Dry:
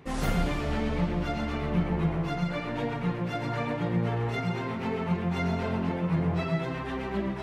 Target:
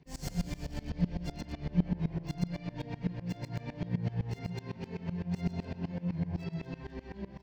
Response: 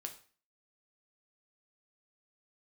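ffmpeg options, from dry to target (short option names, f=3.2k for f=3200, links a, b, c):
-filter_complex "[0:a]bass=f=250:g=10,treble=f=4k:g=13[a];[1:a]atrim=start_sample=2205,atrim=end_sample=3528,asetrate=66150,aresample=44100[b];[a][b]afir=irnorm=-1:irlink=0,acrossover=split=380|4600[c][d][e];[e]acrusher=bits=5:dc=4:mix=0:aa=0.000001[f];[c][d][f]amix=inputs=3:normalize=0,dynaudnorm=f=290:g=5:m=3dB,superequalizer=10b=0.398:14b=2.51:15b=2.51,asplit=2[g][h];[h]adelay=236,lowpass=f=2.5k:p=1,volume=-13dB,asplit=2[i][j];[j]adelay=236,lowpass=f=2.5k:p=1,volume=0.34,asplit=2[k][l];[l]adelay=236,lowpass=f=2.5k:p=1,volume=0.34[m];[g][i][k][m]amix=inputs=4:normalize=0,aeval=exprs='val(0)*pow(10,-22*if(lt(mod(-7.9*n/s,1),2*abs(-7.9)/1000),1-mod(-7.9*n/s,1)/(2*abs(-7.9)/1000),(mod(-7.9*n/s,1)-2*abs(-7.9)/1000)/(1-2*abs(-7.9)/1000))/20)':c=same,volume=-3.5dB"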